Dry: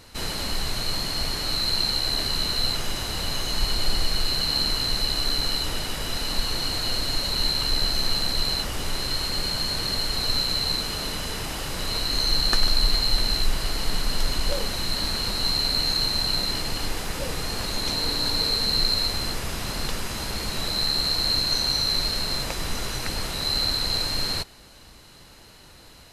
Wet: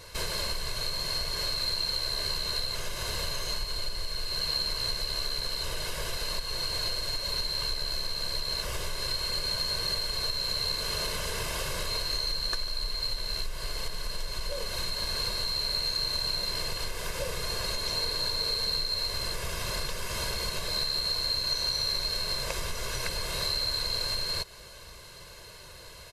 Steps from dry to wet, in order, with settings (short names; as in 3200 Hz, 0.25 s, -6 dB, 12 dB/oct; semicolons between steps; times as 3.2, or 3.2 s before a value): comb 1.9 ms, depth 83%; compressor, threshold -26 dBFS, peak gain reduction 16.5 dB; low shelf 170 Hz -4.5 dB